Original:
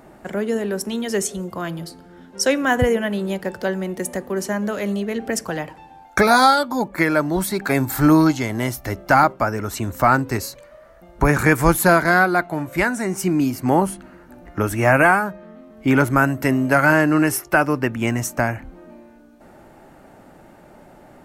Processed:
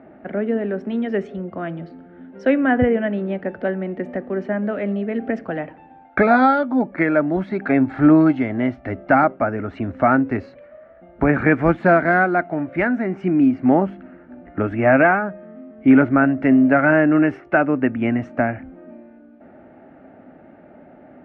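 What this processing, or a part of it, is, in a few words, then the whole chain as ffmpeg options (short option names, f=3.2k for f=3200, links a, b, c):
bass cabinet: -af "highpass=74,equalizer=f=130:t=q:w=4:g=-4,equalizer=f=260:t=q:w=4:g=8,equalizer=f=650:t=q:w=4:g=5,equalizer=f=1k:t=q:w=4:g=-9,lowpass=f=2.4k:w=0.5412,lowpass=f=2.4k:w=1.3066,volume=-1dB"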